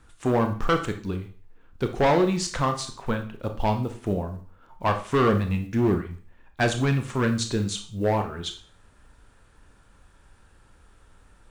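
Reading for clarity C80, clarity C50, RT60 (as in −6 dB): 15.5 dB, 10.5 dB, 0.45 s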